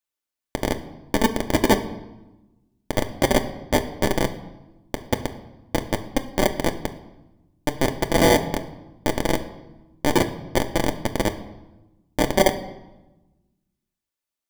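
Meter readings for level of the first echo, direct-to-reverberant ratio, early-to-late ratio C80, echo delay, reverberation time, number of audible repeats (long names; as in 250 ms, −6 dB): no echo audible, 4.5 dB, 15.0 dB, no echo audible, 1.0 s, no echo audible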